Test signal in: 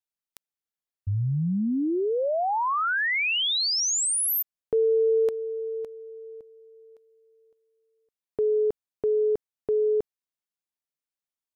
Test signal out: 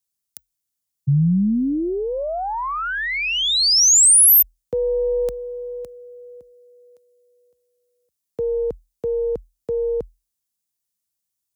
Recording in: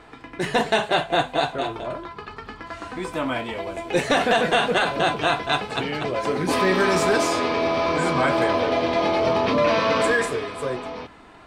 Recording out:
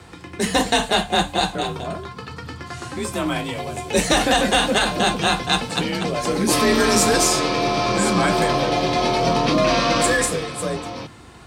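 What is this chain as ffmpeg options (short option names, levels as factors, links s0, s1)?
-af "aeval=exprs='0.355*(cos(1*acos(clip(val(0)/0.355,-1,1)))-cos(1*PI/2))+0.0158*(cos(4*acos(clip(val(0)/0.355,-1,1)))-cos(4*PI/2))+0.00794*(cos(6*acos(clip(val(0)/0.355,-1,1)))-cos(6*PI/2))+0.00251*(cos(8*acos(clip(val(0)/0.355,-1,1)))-cos(8*PI/2))':c=same,afreqshift=41,bass=f=250:g=11,treble=f=4000:g=14"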